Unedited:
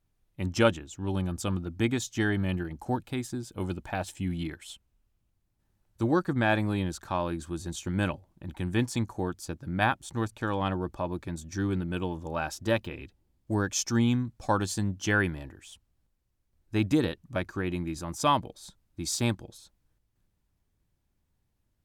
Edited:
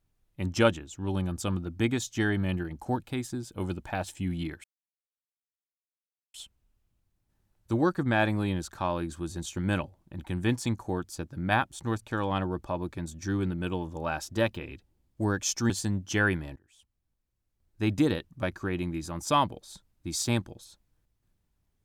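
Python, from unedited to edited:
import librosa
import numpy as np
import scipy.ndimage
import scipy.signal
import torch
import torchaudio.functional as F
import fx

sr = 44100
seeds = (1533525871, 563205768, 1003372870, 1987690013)

y = fx.edit(x, sr, fx.insert_silence(at_s=4.64, length_s=1.7),
    fx.cut(start_s=14.0, length_s=0.63),
    fx.fade_in_from(start_s=15.49, length_s=1.42, floor_db=-18.5), tone=tone)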